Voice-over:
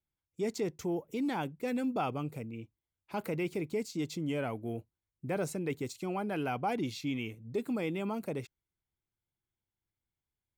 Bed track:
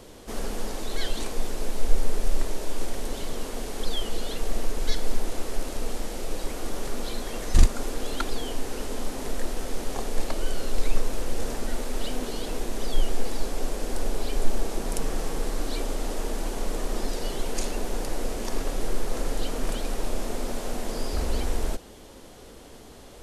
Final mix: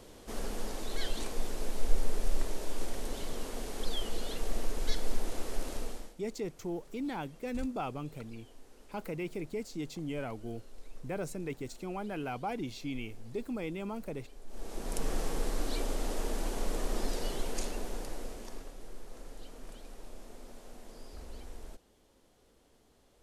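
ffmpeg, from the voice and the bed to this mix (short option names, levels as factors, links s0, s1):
-filter_complex "[0:a]adelay=5800,volume=0.668[s0];[1:a]volume=5.62,afade=t=out:st=5.75:d=0.4:silence=0.105925,afade=t=in:st=14.47:d=0.64:silence=0.0891251,afade=t=out:st=17.16:d=1.58:silence=0.177828[s1];[s0][s1]amix=inputs=2:normalize=0"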